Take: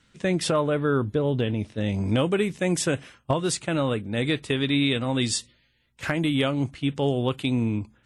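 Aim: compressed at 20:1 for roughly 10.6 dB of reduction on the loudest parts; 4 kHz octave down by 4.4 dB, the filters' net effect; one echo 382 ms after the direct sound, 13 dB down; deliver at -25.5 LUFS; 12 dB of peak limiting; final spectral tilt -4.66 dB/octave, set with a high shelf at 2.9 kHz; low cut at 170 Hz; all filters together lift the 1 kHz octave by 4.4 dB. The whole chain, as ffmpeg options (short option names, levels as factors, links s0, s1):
-af "highpass=170,equalizer=f=1000:t=o:g=5.5,highshelf=f=2900:g=3.5,equalizer=f=4000:t=o:g=-8.5,acompressor=threshold=0.0447:ratio=20,alimiter=level_in=1.06:limit=0.0631:level=0:latency=1,volume=0.944,aecho=1:1:382:0.224,volume=2.99"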